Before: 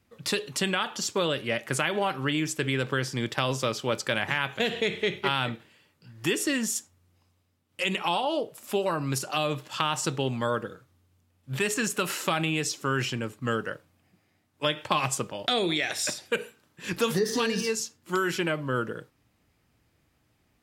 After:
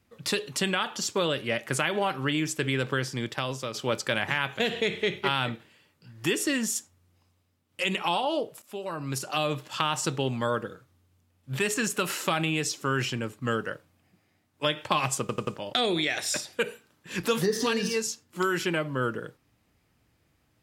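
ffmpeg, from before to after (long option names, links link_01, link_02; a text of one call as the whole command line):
ffmpeg -i in.wav -filter_complex "[0:a]asplit=6[link_01][link_02][link_03][link_04][link_05][link_06];[link_01]atrim=end=3.74,asetpts=PTS-STARTPTS,afade=type=out:start_time=2.92:duration=0.82:silence=0.421697[link_07];[link_02]atrim=start=3.74:end=8.62,asetpts=PTS-STARTPTS,afade=type=in:duration=0.004:curve=hsin:silence=0.421697,afade=type=out:start_time=4.876:duration=0.004:curve=hsin:silence=0.158489[link_08];[link_03]atrim=start=8.62:end=15.292,asetpts=PTS-STARTPTS,afade=type=in:duration=0.77:silence=0.158489[link_09];[link_04]atrim=start=15.198:end=15.292[link_10];[link_05]atrim=start=15.198:end=15.292[link_11];[link_06]atrim=start=15.198[link_12];[link_07][link_08][link_09]concat=n=3:v=0:a=1[link_13];[link_13][link_10]acrossfade=duration=0.004:curve1=hsin:curve2=hsin[link_14];[link_14][link_11]acrossfade=duration=0.004:curve1=hsin:curve2=hsin[link_15];[link_15][link_12]acrossfade=duration=0.004:curve1=hsin:curve2=hsin" out.wav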